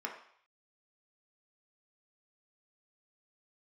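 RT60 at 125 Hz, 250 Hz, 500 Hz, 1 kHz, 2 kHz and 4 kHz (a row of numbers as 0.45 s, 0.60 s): 0.60 s, 0.45 s, 0.55 s, 0.65 s, 0.65 s, 0.65 s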